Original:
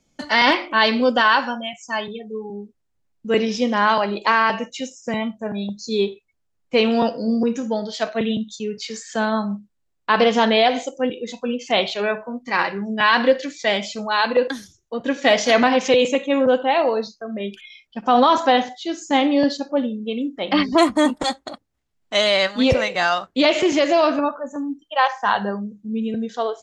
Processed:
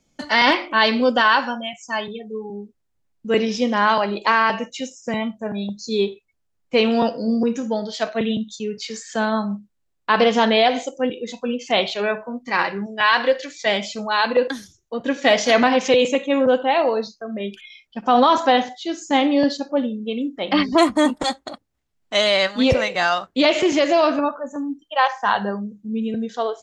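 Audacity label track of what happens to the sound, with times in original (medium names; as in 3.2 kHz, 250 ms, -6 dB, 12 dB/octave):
12.860000	13.660000	peaking EQ 210 Hz -11 dB 1.3 oct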